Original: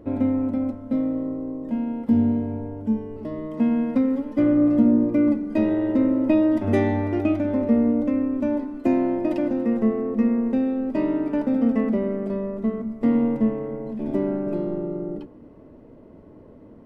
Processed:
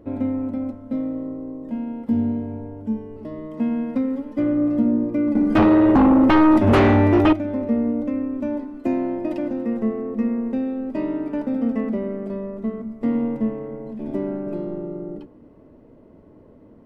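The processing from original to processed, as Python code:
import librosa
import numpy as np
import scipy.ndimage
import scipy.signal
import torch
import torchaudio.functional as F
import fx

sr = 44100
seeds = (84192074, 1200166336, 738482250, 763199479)

y = fx.fold_sine(x, sr, drive_db=9, ceiling_db=-8.5, at=(5.35, 7.33))
y = y * 10.0 ** (-2.0 / 20.0)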